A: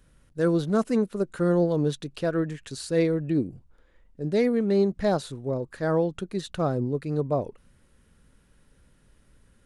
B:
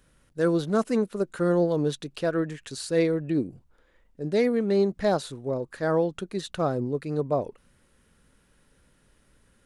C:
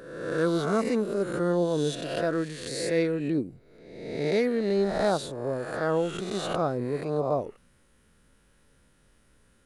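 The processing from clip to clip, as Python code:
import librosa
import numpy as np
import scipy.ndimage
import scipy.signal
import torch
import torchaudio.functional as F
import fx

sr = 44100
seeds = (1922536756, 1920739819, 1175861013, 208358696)

y1 = fx.low_shelf(x, sr, hz=200.0, db=-7.0)
y1 = y1 * 10.0 ** (1.5 / 20.0)
y2 = fx.spec_swells(y1, sr, rise_s=1.09)
y2 = y2 * 10.0 ** (-3.0 / 20.0)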